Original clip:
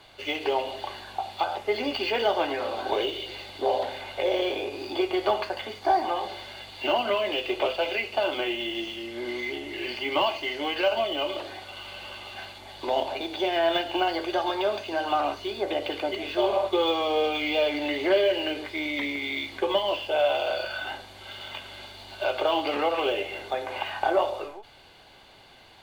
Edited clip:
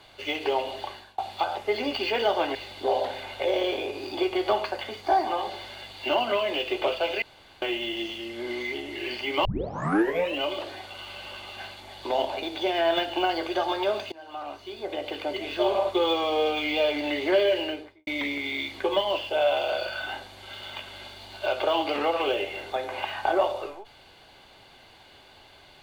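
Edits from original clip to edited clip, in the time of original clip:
0:00.83–0:01.18: fade out, to −21.5 dB
0:02.55–0:03.33: remove
0:08.00–0:08.40: fill with room tone
0:10.23: tape start 0.97 s
0:14.90–0:16.33: fade in, from −21.5 dB
0:18.35–0:18.85: fade out and dull

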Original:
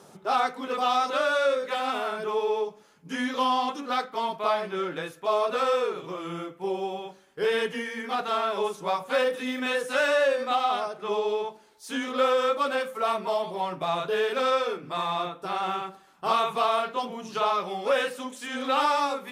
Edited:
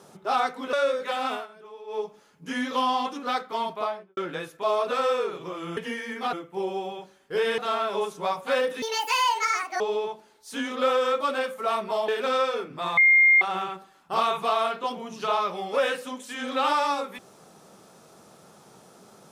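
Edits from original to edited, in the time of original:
0:00.73–0:01.36: remove
0:01.96–0:02.64: duck −17 dB, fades 0.14 s
0:04.32–0:04.80: fade out and dull
0:07.65–0:08.21: move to 0:06.40
0:09.45–0:11.17: play speed 175%
0:13.45–0:14.21: remove
0:15.10–0:15.54: beep over 2,120 Hz −13.5 dBFS

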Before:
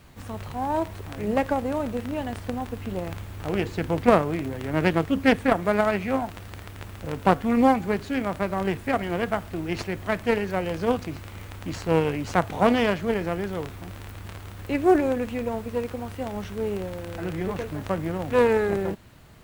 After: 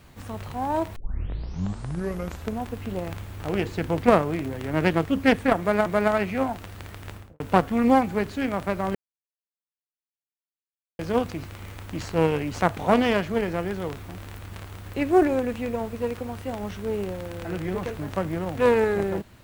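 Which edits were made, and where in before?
0:00.96: tape start 1.74 s
0:05.59–0:05.86: repeat, 2 plays
0:06.84–0:07.13: fade out and dull
0:08.68–0:10.72: silence

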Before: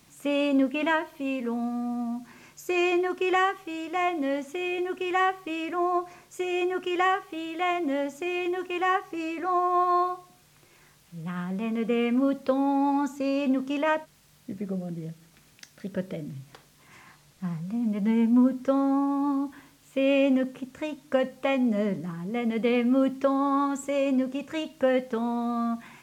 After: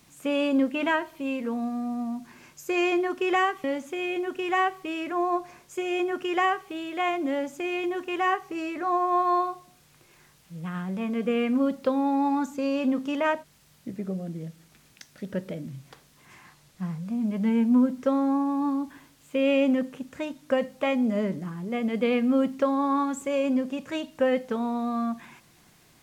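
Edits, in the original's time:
0:03.64–0:04.26: remove

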